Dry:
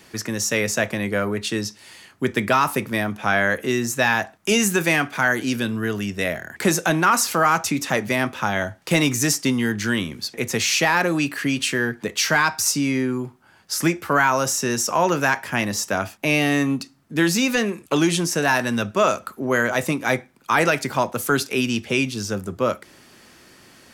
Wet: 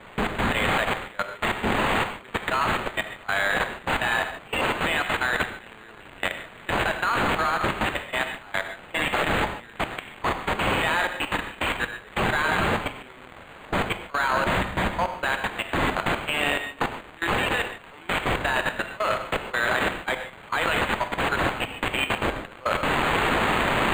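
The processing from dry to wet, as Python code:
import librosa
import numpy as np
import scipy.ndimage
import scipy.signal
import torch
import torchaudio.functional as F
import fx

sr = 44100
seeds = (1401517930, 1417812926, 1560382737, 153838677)

y = x + 0.5 * 10.0 ** (-17.5 / 20.0) * np.diff(np.sign(x), prepend=np.sign(x[:1]))
y = fx.rider(y, sr, range_db=3, speed_s=2.0)
y = fx.high_shelf(y, sr, hz=6000.0, db=-11.0)
y = y + 10.0 ** (-12.0 / 20.0) * np.pad(y, (int(177 * sr / 1000.0), 0))[:len(y)]
y = fx.transient(y, sr, attack_db=-8, sustain_db=4)
y = scipy.signal.sosfilt(scipy.signal.butter(2, 690.0, 'highpass', fs=sr, output='sos'), y)
y = fx.high_shelf(y, sr, hz=2500.0, db=10.0)
y = fx.level_steps(y, sr, step_db=22)
y = fx.rev_gated(y, sr, seeds[0], gate_ms=170, shape='flat', drr_db=6.5)
y = np.interp(np.arange(len(y)), np.arange(len(y))[::8], y[::8])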